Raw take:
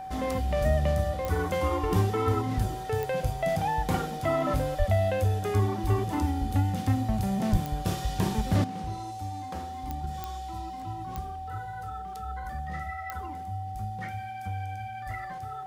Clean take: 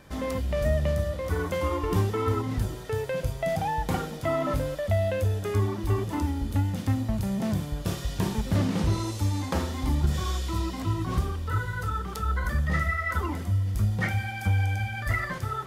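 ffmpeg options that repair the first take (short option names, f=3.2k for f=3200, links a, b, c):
-filter_complex "[0:a]adeclick=t=4,bandreject=f=760:w=30,asplit=3[a][b][c];[a]afade=t=out:st=4.78:d=0.02[d];[b]highpass=f=140:w=0.5412,highpass=f=140:w=1.3066,afade=t=in:st=4.78:d=0.02,afade=t=out:st=4.9:d=0.02[e];[c]afade=t=in:st=4.9:d=0.02[f];[d][e][f]amix=inputs=3:normalize=0,asplit=3[g][h][i];[g]afade=t=out:st=7.51:d=0.02[j];[h]highpass=f=140:w=0.5412,highpass=f=140:w=1.3066,afade=t=in:st=7.51:d=0.02,afade=t=out:st=7.63:d=0.02[k];[i]afade=t=in:st=7.63:d=0.02[l];[j][k][l]amix=inputs=3:normalize=0,asetnsamples=n=441:p=0,asendcmd='8.64 volume volume 11.5dB',volume=0dB"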